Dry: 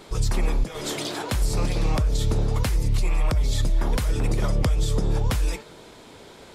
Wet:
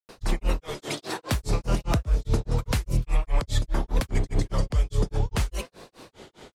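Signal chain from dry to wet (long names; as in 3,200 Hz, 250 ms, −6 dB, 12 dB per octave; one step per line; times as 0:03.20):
granular cloud 198 ms, grains 4.9 per second, pitch spread up and down by 3 semitones
level +1.5 dB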